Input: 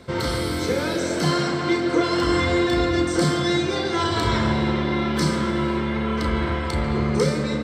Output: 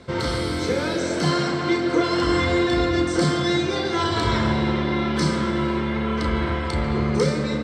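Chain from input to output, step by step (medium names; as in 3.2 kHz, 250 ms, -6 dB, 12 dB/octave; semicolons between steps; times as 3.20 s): low-pass 8.4 kHz 12 dB/octave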